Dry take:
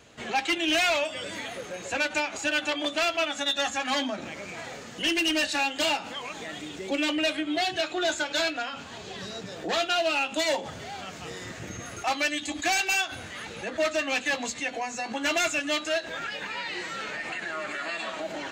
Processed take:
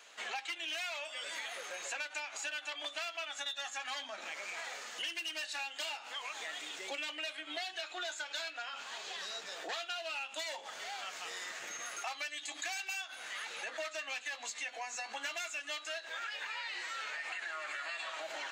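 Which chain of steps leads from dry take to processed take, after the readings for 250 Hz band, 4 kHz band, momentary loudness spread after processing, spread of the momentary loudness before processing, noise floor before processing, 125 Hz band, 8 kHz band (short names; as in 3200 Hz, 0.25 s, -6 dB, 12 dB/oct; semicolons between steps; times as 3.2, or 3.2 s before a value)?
-26.5 dB, -10.5 dB, 4 LU, 13 LU, -41 dBFS, under -30 dB, -8.5 dB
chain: HPF 890 Hz 12 dB/oct; compressor 6:1, threshold -38 dBFS, peak gain reduction 15 dB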